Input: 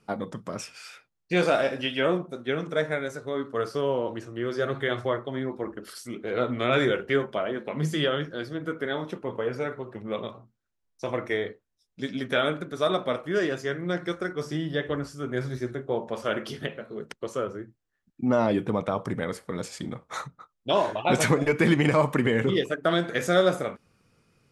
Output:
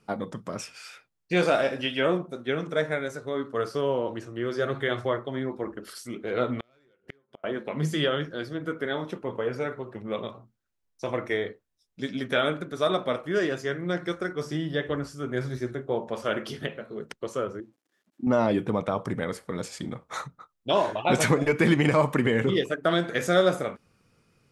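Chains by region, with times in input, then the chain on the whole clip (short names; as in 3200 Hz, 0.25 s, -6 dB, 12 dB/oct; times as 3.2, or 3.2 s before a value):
6.55–7.44 hard clip -16.5 dBFS + flipped gate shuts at -23 dBFS, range -41 dB
17.6–18.27 switching spikes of -32 dBFS + band-pass 290 Hz, Q 2
whole clip: dry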